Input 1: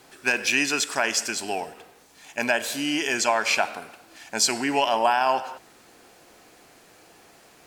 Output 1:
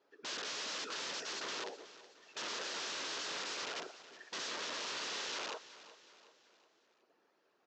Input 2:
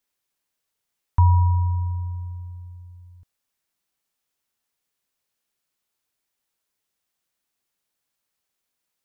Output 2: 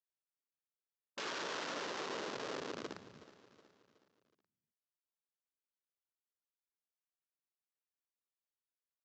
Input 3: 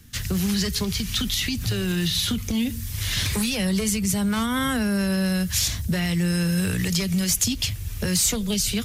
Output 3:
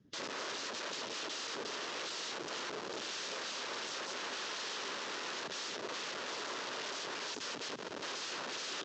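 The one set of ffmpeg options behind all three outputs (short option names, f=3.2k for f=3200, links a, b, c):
-af "afftdn=nr=20:nf=-37,highshelf=f=2.5k:g=-10.5,alimiter=limit=-18.5dB:level=0:latency=1:release=61,acompressor=threshold=-32dB:ratio=4,afftfilt=real='hypot(re,im)*cos(2*PI*random(0))':imag='hypot(re,im)*sin(2*PI*random(1))':win_size=512:overlap=0.75,aresample=16000,aeval=exprs='(mod(141*val(0)+1,2)-1)/141':c=same,aresample=44100,highpass=340,equalizer=f=410:t=q:w=4:g=3,equalizer=f=750:t=q:w=4:g=-6,equalizer=f=2.2k:t=q:w=4:g=-4,lowpass=f=6.1k:w=0.5412,lowpass=f=6.1k:w=1.3066,aecho=1:1:370|740|1110|1480:0.158|0.0745|0.035|0.0165,volume=8.5dB"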